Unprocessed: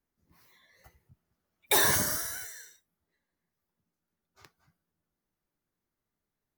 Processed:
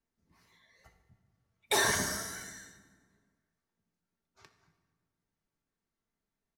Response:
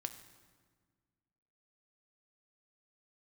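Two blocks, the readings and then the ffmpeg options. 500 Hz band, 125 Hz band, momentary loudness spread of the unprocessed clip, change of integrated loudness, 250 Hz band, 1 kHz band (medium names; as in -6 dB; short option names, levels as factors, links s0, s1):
-1.0 dB, -3.5 dB, 17 LU, -4.5 dB, -1.5 dB, -1.5 dB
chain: -filter_complex "[0:a]lowpass=8700,aecho=1:1:4.4:0.34[s0];[1:a]atrim=start_sample=2205[s1];[s0][s1]afir=irnorm=-1:irlink=0"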